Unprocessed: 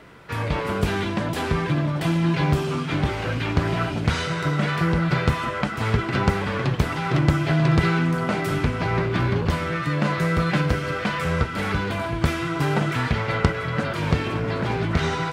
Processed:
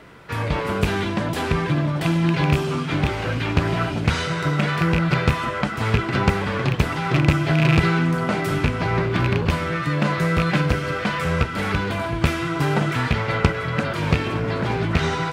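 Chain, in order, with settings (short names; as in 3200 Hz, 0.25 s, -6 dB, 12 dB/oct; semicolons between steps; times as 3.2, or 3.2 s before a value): rattling part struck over -17 dBFS, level -13 dBFS; gain +1.5 dB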